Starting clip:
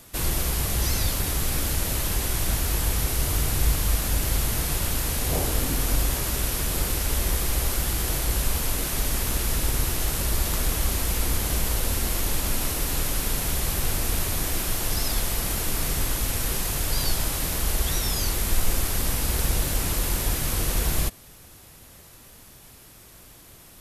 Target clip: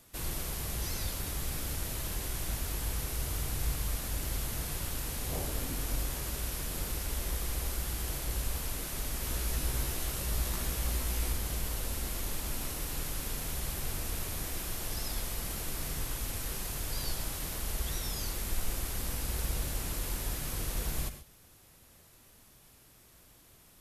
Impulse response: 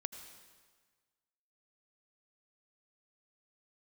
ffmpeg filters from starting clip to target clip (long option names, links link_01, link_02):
-filter_complex "[0:a]asettb=1/sr,asplit=3[link_01][link_02][link_03];[link_01]atrim=end=9.214[link_04];[link_02]atrim=start=9.21:end=11.33,asetpts=PTS-STARTPTS,afade=type=in:duration=0.004:curve=qsin,afade=type=out:start_time=2.116:duration=0.004:curve=qsin,asplit=2[link_05][link_06];[link_06]adelay=16,volume=-3.5dB[link_07];[link_05][link_07]amix=inputs=2:normalize=0,atrim=end_sample=93492[link_08];[link_03]atrim=start=11.326[link_09];[link_04][link_08]acrossfade=duration=0.004:curve1=hsin:curve2=qsin[link_10];[link_10][link_09]acrossfade=duration=0.004:curve1=qsin:curve2=hsin[link_11];[1:a]atrim=start_sample=2205,atrim=end_sample=6615[link_12];[link_11][link_12]afir=irnorm=-1:irlink=0,volume=-8.5dB"